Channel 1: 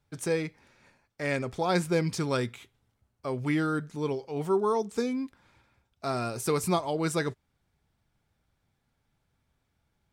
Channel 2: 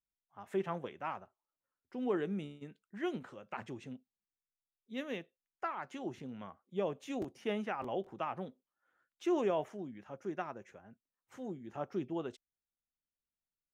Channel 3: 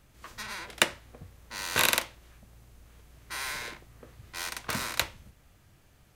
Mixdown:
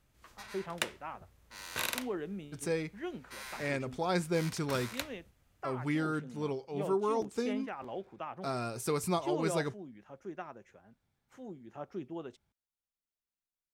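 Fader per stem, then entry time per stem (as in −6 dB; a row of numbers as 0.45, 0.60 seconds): −5.0, −3.5, −10.5 decibels; 2.40, 0.00, 0.00 seconds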